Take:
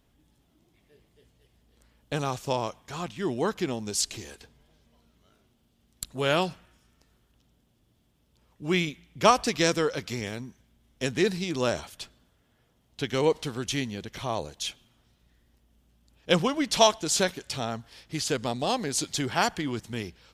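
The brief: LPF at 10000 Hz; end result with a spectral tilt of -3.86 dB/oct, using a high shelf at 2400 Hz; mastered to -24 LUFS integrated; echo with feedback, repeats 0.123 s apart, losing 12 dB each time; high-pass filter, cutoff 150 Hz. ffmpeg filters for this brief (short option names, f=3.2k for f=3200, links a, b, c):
-af "highpass=150,lowpass=10k,highshelf=f=2.4k:g=-3.5,aecho=1:1:123|246|369:0.251|0.0628|0.0157,volume=5dB"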